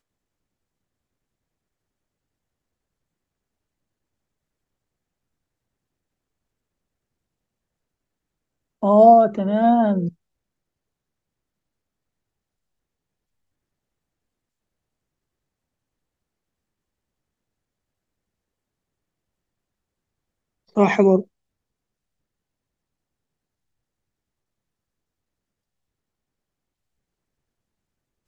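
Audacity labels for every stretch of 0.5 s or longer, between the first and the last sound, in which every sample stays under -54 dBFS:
10.140000	20.680000	silence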